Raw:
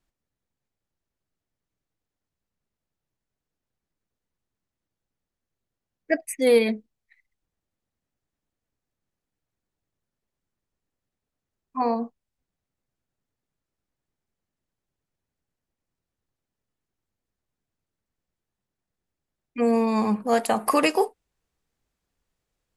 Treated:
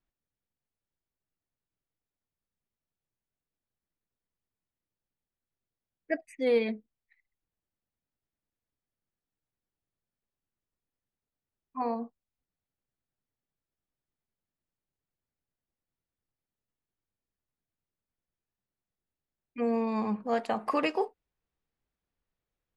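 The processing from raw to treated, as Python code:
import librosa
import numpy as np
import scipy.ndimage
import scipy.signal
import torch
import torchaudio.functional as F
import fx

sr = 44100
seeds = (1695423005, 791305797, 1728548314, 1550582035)

y = scipy.signal.sosfilt(scipy.signal.butter(2, 3800.0, 'lowpass', fs=sr, output='sos'), x)
y = y * librosa.db_to_amplitude(-7.5)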